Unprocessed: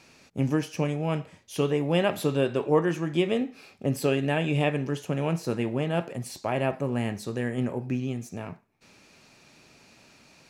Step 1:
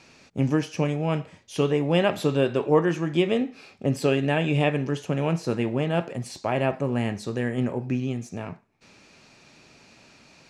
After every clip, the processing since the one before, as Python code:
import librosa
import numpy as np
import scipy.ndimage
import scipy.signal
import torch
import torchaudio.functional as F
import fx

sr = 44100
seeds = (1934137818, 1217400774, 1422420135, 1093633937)

y = scipy.signal.sosfilt(scipy.signal.butter(2, 8000.0, 'lowpass', fs=sr, output='sos'), x)
y = y * librosa.db_to_amplitude(2.5)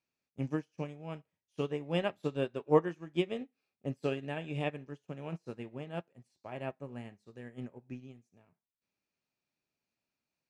y = fx.upward_expand(x, sr, threshold_db=-37.0, expansion=2.5)
y = y * librosa.db_to_amplitude(-4.0)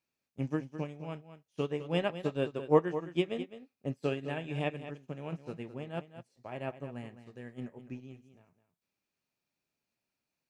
y = x + 10.0 ** (-12.0 / 20.0) * np.pad(x, (int(210 * sr / 1000.0), 0))[:len(x)]
y = y * librosa.db_to_amplitude(1.0)